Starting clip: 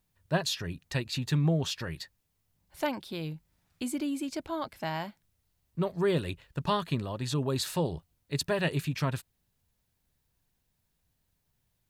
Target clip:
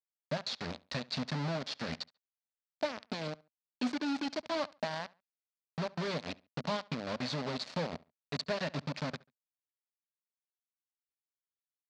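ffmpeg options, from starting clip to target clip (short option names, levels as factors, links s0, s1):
-filter_complex "[0:a]adynamicequalizer=threshold=0.00398:dfrequency=3800:dqfactor=1.3:tfrequency=3800:tqfactor=1.3:attack=5:release=100:ratio=0.375:range=2.5:mode=cutabove:tftype=bell,acompressor=threshold=0.0224:ratio=8,acrusher=bits=5:mix=0:aa=0.000001,highpass=100,equalizer=f=110:t=q:w=4:g=-9,equalizer=f=240:t=q:w=4:g=6,equalizer=f=360:t=q:w=4:g=-8,equalizer=f=600:t=q:w=4:g=6,equalizer=f=3000:t=q:w=4:g=-3,equalizer=f=4400:t=q:w=4:g=5,lowpass=f=5200:w=0.5412,lowpass=f=5200:w=1.3066,asplit=2[s0][s1];[s1]adelay=70,lowpass=f=3700:p=1,volume=0.0794,asplit=2[s2][s3];[s3]adelay=70,lowpass=f=3700:p=1,volume=0.27[s4];[s0][s2][s4]amix=inputs=3:normalize=0"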